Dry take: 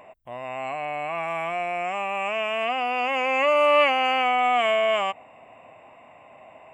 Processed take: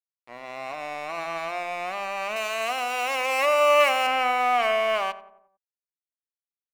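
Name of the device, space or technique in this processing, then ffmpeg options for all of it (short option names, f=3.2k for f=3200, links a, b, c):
pocket radio on a weak battery: -filter_complex "[0:a]highpass=300,lowpass=3.1k,aeval=exprs='sgn(val(0))*max(abs(val(0))-0.015,0)':c=same,equalizer=f=1.5k:t=o:w=0.35:g=4.5,asettb=1/sr,asplit=3[a][b][c];[a]atrim=end=2.364[d];[b]atrim=start=2.36:end=4.07,asetpts=PTS-STARTPTS,afade=t=in:d=0.004:c=qsin,afade=t=out:st=1.706:d=0.004:c=qsin,bass=f=250:g=-10,treble=f=4k:g=9[e];[c]atrim=start=4.066[f];[d][e]acrossfade=d=0.004:c1=hsin:c2=qsin[g];[g][f]acrossfade=d=0.004:c1=qsin:c2=hsin,asplit=2[h][i];[i]adelay=90,lowpass=f=1.4k:p=1,volume=-13.5dB,asplit=2[j][k];[k]adelay=90,lowpass=f=1.4k:p=1,volume=0.53,asplit=2[l][m];[m]adelay=90,lowpass=f=1.4k:p=1,volume=0.53,asplit=2[n][o];[o]adelay=90,lowpass=f=1.4k:p=1,volume=0.53,asplit=2[p][q];[q]adelay=90,lowpass=f=1.4k:p=1,volume=0.53[r];[h][j][l][n][p][r]amix=inputs=6:normalize=0"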